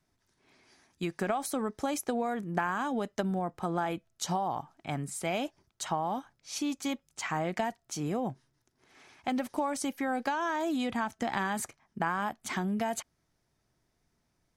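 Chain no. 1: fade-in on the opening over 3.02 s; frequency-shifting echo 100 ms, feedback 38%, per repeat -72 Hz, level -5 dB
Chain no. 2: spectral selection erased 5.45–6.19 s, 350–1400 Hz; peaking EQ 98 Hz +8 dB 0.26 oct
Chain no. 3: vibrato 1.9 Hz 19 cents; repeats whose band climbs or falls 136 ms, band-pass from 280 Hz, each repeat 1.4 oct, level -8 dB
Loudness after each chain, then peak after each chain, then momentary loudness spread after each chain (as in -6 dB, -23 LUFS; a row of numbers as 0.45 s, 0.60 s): -32.5 LUFS, -33.5 LUFS, -33.0 LUFS; -15.5 dBFS, -15.5 dBFS, -15.0 dBFS; 8 LU, 8 LU, 7 LU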